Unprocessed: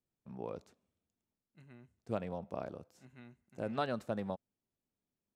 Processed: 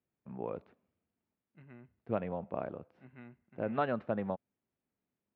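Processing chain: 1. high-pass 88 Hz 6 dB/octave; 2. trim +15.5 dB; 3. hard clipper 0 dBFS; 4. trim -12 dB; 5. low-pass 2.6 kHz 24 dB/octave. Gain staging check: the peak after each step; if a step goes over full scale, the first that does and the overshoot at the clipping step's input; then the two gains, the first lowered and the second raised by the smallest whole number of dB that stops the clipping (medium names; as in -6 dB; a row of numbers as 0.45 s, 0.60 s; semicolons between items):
-20.5 dBFS, -5.0 dBFS, -5.0 dBFS, -17.0 dBFS, -18.0 dBFS; nothing clips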